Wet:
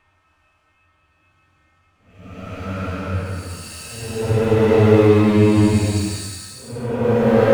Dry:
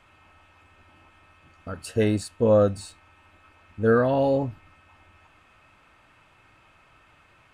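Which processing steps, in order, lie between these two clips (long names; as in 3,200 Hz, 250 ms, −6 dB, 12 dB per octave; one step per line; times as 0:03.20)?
loose part that buzzes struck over −32 dBFS, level −30 dBFS
harmonic and percussive parts rebalanced harmonic +9 dB
leveller curve on the samples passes 3
extreme stretch with random phases 6.1×, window 0.25 s, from 0:01.23
level −6.5 dB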